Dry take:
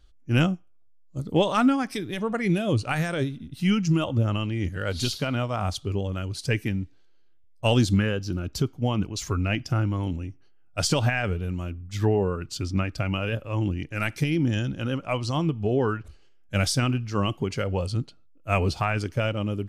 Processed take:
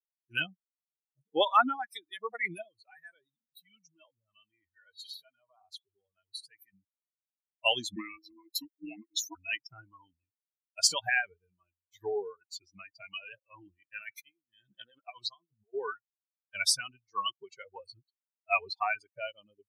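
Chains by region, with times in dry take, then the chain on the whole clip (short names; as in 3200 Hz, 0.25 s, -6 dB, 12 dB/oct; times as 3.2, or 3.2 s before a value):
2.62–6.73 compressor 5:1, threshold -30 dBFS + transient shaper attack -3 dB, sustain +6 dB
7.96–9.35 high shelf 7800 Hz +6.5 dB + frequency shift -420 Hz
13.86–15.74 negative-ratio compressor -29 dBFS, ratio -0.5 + Doppler distortion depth 0.17 ms
whole clip: per-bin expansion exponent 3; HPF 770 Hz 12 dB/oct; gain +6 dB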